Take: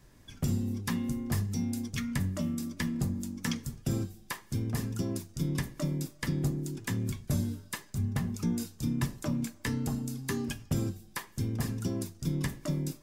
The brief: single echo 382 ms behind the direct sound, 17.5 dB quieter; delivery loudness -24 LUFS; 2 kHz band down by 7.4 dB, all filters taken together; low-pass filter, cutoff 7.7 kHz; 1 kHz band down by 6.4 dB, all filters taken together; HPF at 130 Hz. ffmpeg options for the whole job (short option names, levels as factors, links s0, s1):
-af "highpass=130,lowpass=7700,equalizer=f=1000:t=o:g=-6,equalizer=f=2000:t=o:g=-7,aecho=1:1:382:0.133,volume=3.98"